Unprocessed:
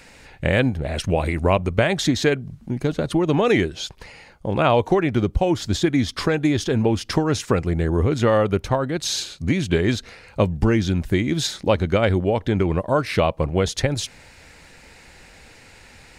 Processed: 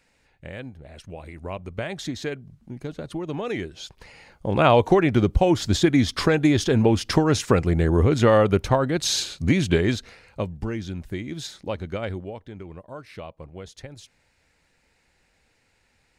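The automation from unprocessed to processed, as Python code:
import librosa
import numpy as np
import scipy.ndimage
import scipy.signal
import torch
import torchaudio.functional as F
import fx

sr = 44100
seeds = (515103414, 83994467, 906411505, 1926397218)

y = fx.gain(x, sr, db=fx.line((1.22, -18.0), (1.88, -11.0), (3.57, -11.0), (4.65, 1.0), (9.65, 1.0), (10.58, -11.0), (12.1, -11.0), (12.5, -19.0)))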